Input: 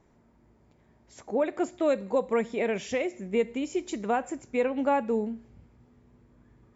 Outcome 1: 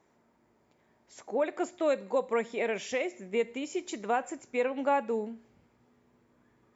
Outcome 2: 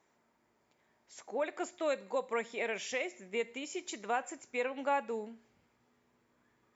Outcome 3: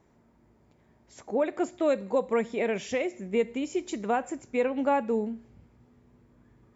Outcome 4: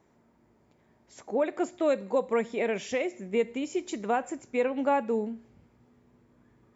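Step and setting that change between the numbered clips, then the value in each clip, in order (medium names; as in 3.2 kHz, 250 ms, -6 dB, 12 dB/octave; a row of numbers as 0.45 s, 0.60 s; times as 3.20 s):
high-pass, cutoff frequency: 460 Hz, 1.3 kHz, 53 Hz, 170 Hz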